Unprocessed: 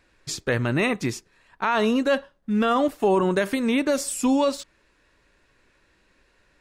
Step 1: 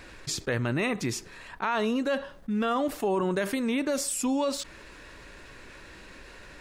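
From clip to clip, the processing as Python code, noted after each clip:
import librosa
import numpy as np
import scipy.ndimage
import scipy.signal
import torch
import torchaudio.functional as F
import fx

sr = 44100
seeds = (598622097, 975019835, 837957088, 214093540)

y = fx.env_flatten(x, sr, amount_pct=50)
y = F.gain(torch.from_numpy(y), -7.5).numpy()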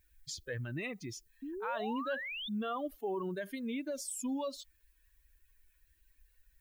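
y = fx.bin_expand(x, sr, power=2.0)
y = fx.dmg_noise_colour(y, sr, seeds[0], colour='violet', level_db=-68.0)
y = fx.spec_paint(y, sr, seeds[1], shape='rise', start_s=1.42, length_s=1.07, low_hz=260.0, high_hz=3700.0, level_db=-34.0)
y = F.gain(torch.from_numpy(y), -7.0).numpy()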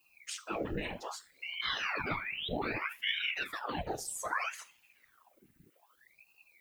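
y = fx.rev_double_slope(x, sr, seeds[2], early_s=0.3, late_s=2.1, knee_db=-28, drr_db=8.0)
y = fx.whisperise(y, sr, seeds[3])
y = fx.ring_lfo(y, sr, carrier_hz=1400.0, swing_pct=90, hz=0.63)
y = F.gain(torch.from_numpy(y), 3.5).numpy()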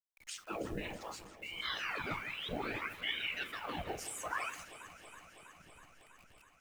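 y = fx.delta_hold(x, sr, step_db=-52.5)
y = fx.echo_alternate(y, sr, ms=162, hz=2100.0, feedback_pct=86, wet_db=-13)
y = F.gain(torch.from_numpy(y), -4.0).numpy()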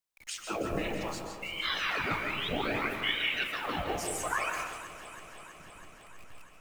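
y = fx.rev_freeverb(x, sr, rt60_s=1.1, hf_ratio=0.3, predelay_ms=105, drr_db=3.5)
y = F.gain(torch.from_numpy(y), 6.0).numpy()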